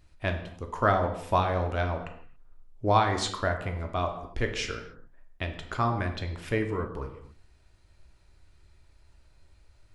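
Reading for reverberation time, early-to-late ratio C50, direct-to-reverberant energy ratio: not exponential, 8.5 dB, 4.0 dB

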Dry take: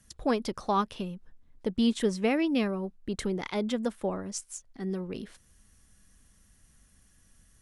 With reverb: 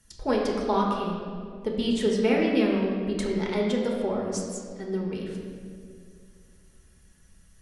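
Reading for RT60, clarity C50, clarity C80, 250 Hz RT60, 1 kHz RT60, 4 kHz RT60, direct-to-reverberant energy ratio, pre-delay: 2.3 s, 1.5 dB, 3.0 dB, 2.6 s, 1.9 s, 1.4 s, -2.0 dB, 5 ms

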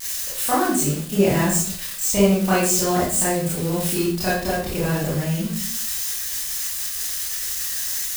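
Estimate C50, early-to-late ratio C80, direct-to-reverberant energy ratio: 1.5 dB, 6.5 dB, -9.5 dB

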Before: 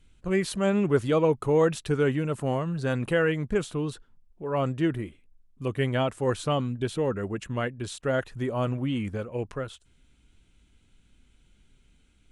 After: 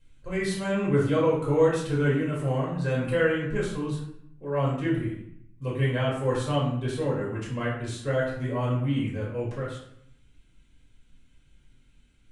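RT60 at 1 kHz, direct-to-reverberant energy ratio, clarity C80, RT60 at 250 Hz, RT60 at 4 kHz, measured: 0.70 s, -6.5 dB, 7.0 dB, 0.90 s, 0.50 s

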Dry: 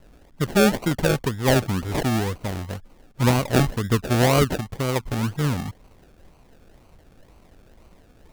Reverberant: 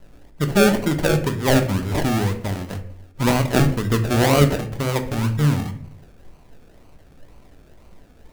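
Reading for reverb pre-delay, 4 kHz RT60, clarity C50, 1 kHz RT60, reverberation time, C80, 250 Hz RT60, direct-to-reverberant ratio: 3 ms, 0.40 s, 11.5 dB, 0.50 s, 0.55 s, 15.5 dB, 0.75 s, 6.5 dB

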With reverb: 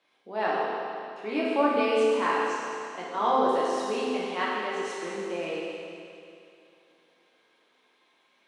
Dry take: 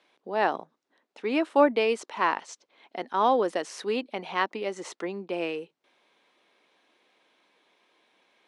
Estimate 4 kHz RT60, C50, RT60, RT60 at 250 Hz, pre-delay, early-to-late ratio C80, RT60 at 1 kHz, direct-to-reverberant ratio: 2.6 s, -2.5 dB, 2.6 s, 2.6 s, 8 ms, -0.5 dB, 2.6 s, -7.0 dB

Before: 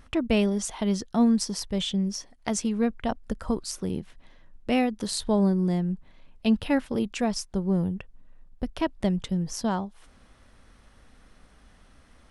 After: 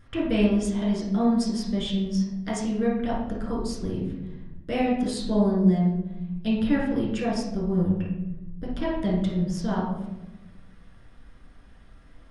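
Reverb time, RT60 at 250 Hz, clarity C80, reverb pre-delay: 1.0 s, 1.6 s, 5.5 dB, 7 ms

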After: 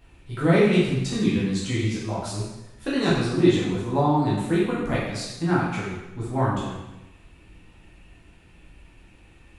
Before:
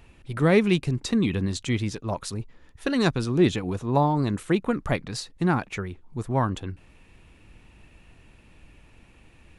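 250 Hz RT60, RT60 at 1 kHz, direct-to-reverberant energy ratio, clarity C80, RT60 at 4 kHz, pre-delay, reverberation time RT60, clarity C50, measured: 1.0 s, 1.0 s, -7.5 dB, 3.5 dB, 0.95 s, 6 ms, 1.0 s, 0.5 dB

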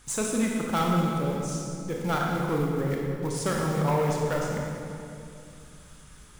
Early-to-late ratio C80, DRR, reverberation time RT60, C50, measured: 1.5 dB, -1.5 dB, 2.6 s, -0.5 dB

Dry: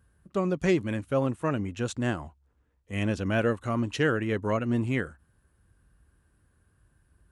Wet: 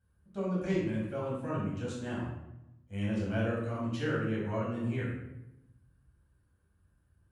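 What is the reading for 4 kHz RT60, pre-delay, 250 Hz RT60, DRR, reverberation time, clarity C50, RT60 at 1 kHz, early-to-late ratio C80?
0.60 s, 10 ms, 1.2 s, -7.0 dB, 0.90 s, 1.0 dB, 0.85 s, 4.0 dB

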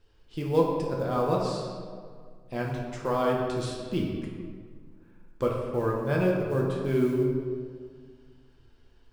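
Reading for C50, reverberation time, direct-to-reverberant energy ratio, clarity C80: 1.5 dB, 1.9 s, -2.0 dB, 3.0 dB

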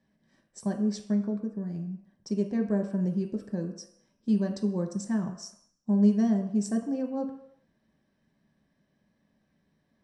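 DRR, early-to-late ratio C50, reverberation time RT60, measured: 1.5 dB, 9.0 dB, not exponential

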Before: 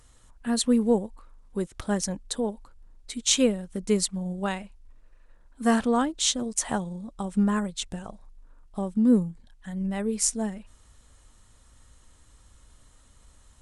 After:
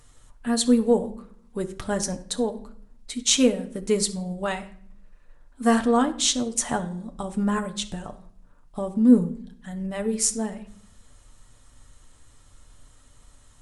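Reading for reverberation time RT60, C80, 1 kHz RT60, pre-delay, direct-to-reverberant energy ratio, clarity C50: 0.60 s, 18.0 dB, 0.55 s, 7 ms, 5.5 dB, 14.5 dB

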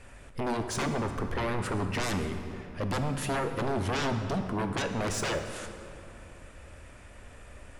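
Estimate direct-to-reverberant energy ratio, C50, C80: 6.5 dB, 7.5 dB, 8.5 dB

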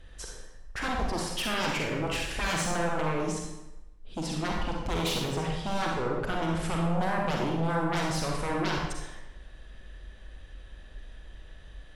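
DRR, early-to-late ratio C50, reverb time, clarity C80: -1.0 dB, 0.5 dB, 0.95 s, 4.0 dB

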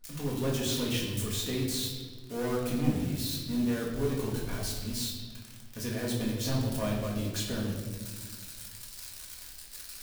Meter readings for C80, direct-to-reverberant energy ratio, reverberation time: 5.0 dB, -4.0 dB, 1.5 s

